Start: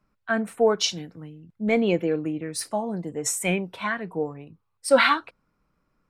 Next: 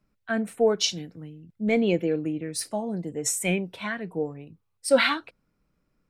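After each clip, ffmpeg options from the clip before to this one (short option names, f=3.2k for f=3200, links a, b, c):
-af "equalizer=f=1.1k:t=o:w=1.1:g=-8"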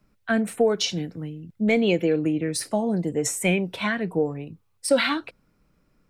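-filter_complex "[0:a]acrossover=split=530|2300[a][b][c];[a]acompressor=threshold=-28dB:ratio=4[d];[b]acompressor=threshold=-34dB:ratio=4[e];[c]acompressor=threshold=-35dB:ratio=4[f];[d][e][f]amix=inputs=3:normalize=0,volume=7.5dB"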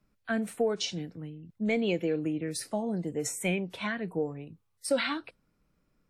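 -af "volume=-7.5dB" -ar 48000 -c:a wmav2 -b:a 64k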